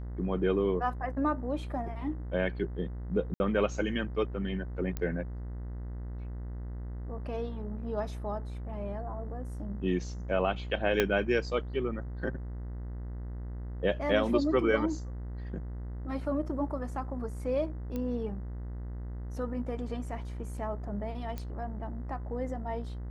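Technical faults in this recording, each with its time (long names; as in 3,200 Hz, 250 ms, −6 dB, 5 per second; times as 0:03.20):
mains buzz 60 Hz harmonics 34 −38 dBFS
0:03.34–0:03.40: drop-out 60 ms
0:04.97: click −20 dBFS
0:11.00: click −11 dBFS
0:17.96: click −23 dBFS
0:21.38: click −23 dBFS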